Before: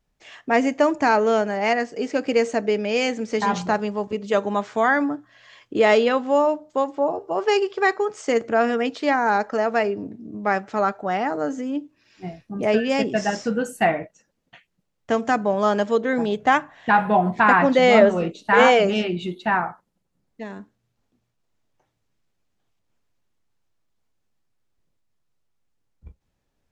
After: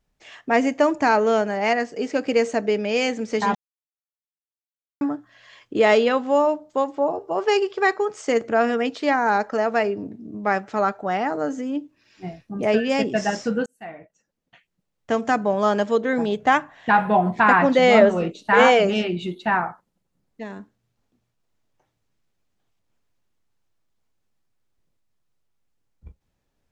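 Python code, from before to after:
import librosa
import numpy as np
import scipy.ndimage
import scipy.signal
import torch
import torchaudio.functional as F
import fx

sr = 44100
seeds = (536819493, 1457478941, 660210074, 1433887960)

y = fx.edit(x, sr, fx.silence(start_s=3.55, length_s=1.46),
    fx.fade_in_span(start_s=13.66, length_s=1.61), tone=tone)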